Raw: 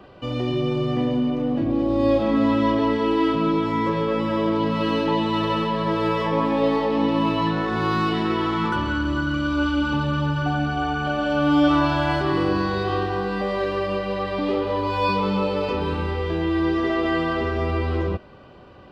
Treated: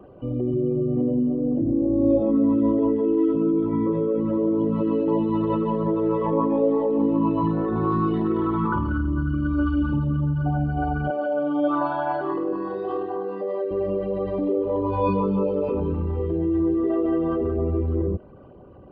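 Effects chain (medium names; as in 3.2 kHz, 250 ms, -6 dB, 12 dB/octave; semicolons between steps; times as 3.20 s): resonances exaggerated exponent 2; 11.10–13.71 s: high-pass 400 Hz 12 dB/octave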